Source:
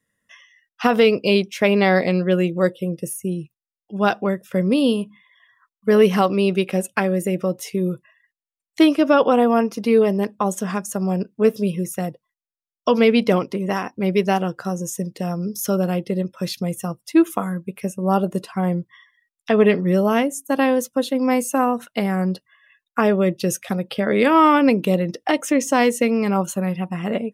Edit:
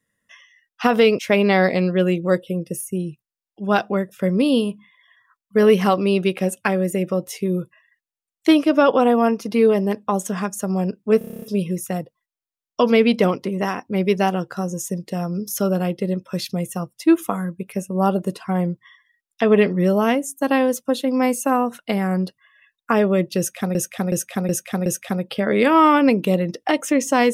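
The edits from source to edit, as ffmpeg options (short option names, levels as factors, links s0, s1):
-filter_complex "[0:a]asplit=14[s0][s1][s2][s3][s4][s5][s6][s7][s8][s9][s10][s11][s12][s13];[s0]atrim=end=1.192[s14];[s1]atrim=start=1.508:end=11.532[s15];[s2]atrim=start=11.498:end=11.532[s16];[s3]atrim=start=11.498:end=11.532[s17];[s4]atrim=start=11.498:end=11.532[s18];[s5]atrim=start=11.498:end=11.532[s19];[s6]atrim=start=11.498:end=11.532[s20];[s7]atrim=start=11.498:end=11.532[s21];[s8]atrim=start=11.498:end=11.532[s22];[s9]atrim=start=11.498:end=23.832[s23];[s10]atrim=start=23.458:end=23.832[s24];[s11]atrim=start=23.458:end=23.832[s25];[s12]atrim=start=23.458:end=23.832[s26];[s13]atrim=start=23.458[s27];[s14][s15]acrossfade=d=0.004:c1=hsin:c2=hsin[s28];[s28][s16]acrossfade=d=0.004:c1=hsin:c2=hsin[s29];[s29][s17]acrossfade=d=0.004:c1=hsin:c2=hsin[s30];[s30][s18]acrossfade=d=0.004:c1=hsin:c2=hsin[s31];[s31][s19]acrossfade=d=0.004:c1=hsin:c2=hsin[s32];[s32][s20]acrossfade=d=0.004:c1=hsin:c2=hsin[s33];[s33][s21]acrossfade=d=0.004:c1=hsin:c2=hsin[s34];[s34][s22]acrossfade=d=0.004:c1=hsin:c2=hsin[s35];[s35][s23]acrossfade=d=0.004:c1=hsin:c2=hsin[s36];[s36][s24]acrossfade=d=0.004:c1=hsin:c2=hsin[s37];[s37][s25]acrossfade=d=0.004:c1=hsin:c2=hsin[s38];[s38][s26]acrossfade=d=0.004:c1=hsin:c2=hsin[s39];[s39][s27]acrossfade=d=0.004:c1=hsin:c2=hsin"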